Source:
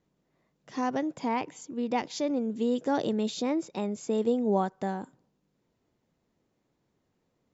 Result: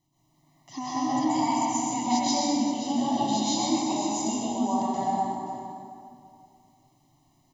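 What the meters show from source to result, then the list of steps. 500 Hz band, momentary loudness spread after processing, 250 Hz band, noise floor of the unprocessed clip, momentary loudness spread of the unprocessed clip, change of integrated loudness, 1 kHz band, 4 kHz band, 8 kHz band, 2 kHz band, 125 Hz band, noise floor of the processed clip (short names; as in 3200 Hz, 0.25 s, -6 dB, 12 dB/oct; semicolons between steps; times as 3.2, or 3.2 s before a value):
-4.5 dB, 13 LU, +3.5 dB, -77 dBFS, 8 LU, +3.5 dB, +8.0 dB, +10.0 dB, n/a, -1.0 dB, +1.0 dB, -67 dBFS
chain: high shelf 4300 Hz +7.5 dB; comb 1 ms, depth 84%; compressor, threshold -30 dBFS, peak gain reduction 10 dB; fixed phaser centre 300 Hz, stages 8; tapped delay 0.126/0.524 s -4.5/-12 dB; plate-style reverb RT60 2.4 s, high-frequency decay 0.55×, pre-delay 0.115 s, DRR -9.5 dB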